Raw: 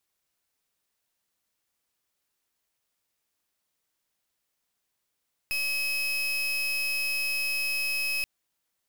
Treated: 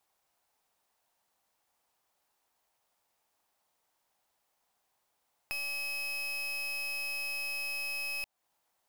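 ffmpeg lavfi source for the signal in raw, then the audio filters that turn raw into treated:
-f lavfi -i "aevalsrc='0.0376*(2*lt(mod(2560*t,1),0.34)-1)':d=2.73:s=44100"
-af "equalizer=f=810:t=o:w=1.1:g=13,acompressor=threshold=0.00794:ratio=2"

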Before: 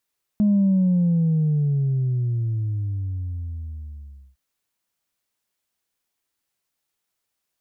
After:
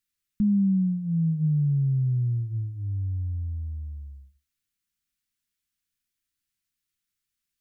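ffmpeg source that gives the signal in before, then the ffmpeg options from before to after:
-f lavfi -i "aevalsrc='0.178*clip((3.96-t)/3.83,0,1)*tanh(1*sin(2*PI*210*3.96/log(65/210)*(exp(log(65/210)*t/3.96)-1)))/tanh(1)':d=3.96:s=44100"
-af "lowshelf=f=78:g=9,flanger=delay=4:depth=5.8:regen=-75:speed=0.39:shape=triangular,asuperstop=centerf=650:order=4:qfactor=0.57"

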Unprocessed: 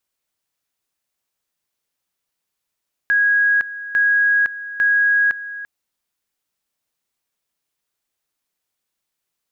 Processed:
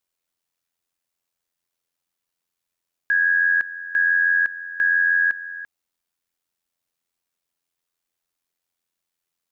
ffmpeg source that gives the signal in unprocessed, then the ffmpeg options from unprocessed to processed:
-f lavfi -i "aevalsrc='pow(10,(-12.5-15*gte(mod(t,0.85),0.51))/20)*sin(2*PI*1650*t)':d=2.55:s=44100"
-af "tremolo=f=86:d=0.621"

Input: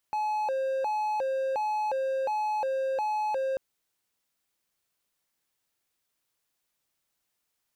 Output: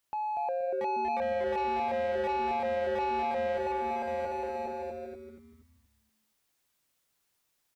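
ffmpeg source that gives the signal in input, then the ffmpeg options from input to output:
-f lavfi -i "aevalsrc='0.0631*(1-4*abs(mod((692*t+160/1.4*(0.5-abs(mod(1.4*t,1)-0.5)))+0.25,1)-0.5))':d=3.44:s=44100"
-filter_complex "[0:a]asplit=2[s0][s1];[s1]aecho=0:1:680|1088|1333|1480|1568:0.631|0.398|0.251|0.158|0.1[s2];[s0][s2]amix=inputs=2:normalize=0,asoftclip=type=tanh:threshold=0.0335,asplit=2[s3][s4];[s4]asplit=5[s5][s6][s7][s8][s9];[s5]adelay=238,afreqshift=-150,volume=0.531[s10];[s6]adelay=476,afreqshift=-300,volume=0.202[s11];[s7]adelay=714,afreqshift=-450,volume=0.0767[s12];[s8]adelay=952,afreqshift=-600,volume=0.0292[s13];[s9]adelay=1190,afreqshift=-750,volume=0.0111[s14];[s10][s11][s12][s13][s14]amix=inputs=5:normalize=0[s15];[s3][s15]amix=inputs=2:normalize=0"

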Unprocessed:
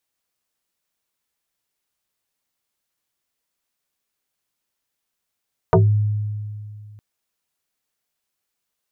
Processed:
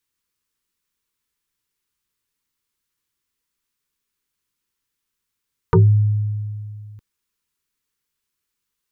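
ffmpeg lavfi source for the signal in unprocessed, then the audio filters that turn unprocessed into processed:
-f lavfi -i "aevalsrc='0.355*pow(10,-3*t/2.4)*sin(2*PI*105*t+4.3*pow(10,-3*t/0.21)*sin(2*PI*2.61*105*t))':d=1.26:s=44100"
-af "asuperstop=centerf=670:order=4:qfactor=1.7,lowshelf=f=99:g=7"

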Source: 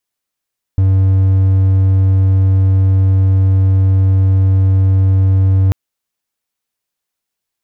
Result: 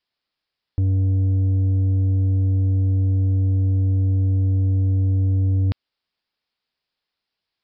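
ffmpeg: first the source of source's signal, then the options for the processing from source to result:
-f lavfi -i "aevalsrc='0.531*(1-4*abs(mod(95.5*t+0.25,1)-0.5))':d=4.94:s=44100"
-af "aemphasis=mode=production:type=50fm,aresample=11025,asoftclip=type=tanh:threshold=0.15,aresample=44100"

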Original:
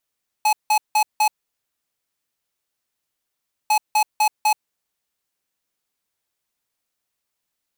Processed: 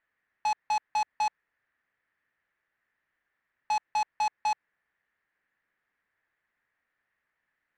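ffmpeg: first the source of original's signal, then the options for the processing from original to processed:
-f lavfi -i "aevalsrc='0.15*(2*lt(mod(852*t,1),0.5)-1)*clip(min(mod(mod(t,3.25),0.25),0.08-mod(mod(t,3.25),0.25))/0.005,0,1)*lt(mod(t,3.25),1)':d=6.5:s=44100"
-af "lowpass=f=1800:t=q:w=5.7,asoftclip=type=tanh:threshold=0.0631"

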